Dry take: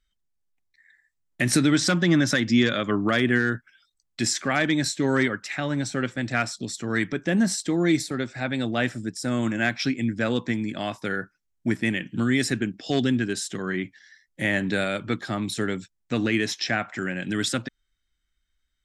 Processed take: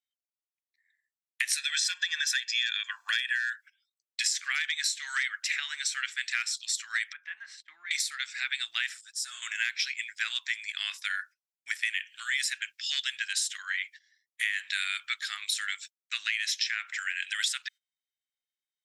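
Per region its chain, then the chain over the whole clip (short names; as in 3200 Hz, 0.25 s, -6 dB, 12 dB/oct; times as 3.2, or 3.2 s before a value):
1.57–3.53 HPF 510 Hz 24 dB/oct + comb 1.2 ms, depth 94%
7.13–7.91 LPF 1300 Hz + compressor 2:1, threshold -25 dBFS
9.01–9.42 bell 2100 Hz -13 dB 0.7 oct + ensemble effect
whole clip: gate -42 dBFS, range -19 dB; inverse Chebyshev high-pass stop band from 550 Hz, stop band 60 dB; compressor 10:1, threshold -32 dBFS; gain +6.5 dB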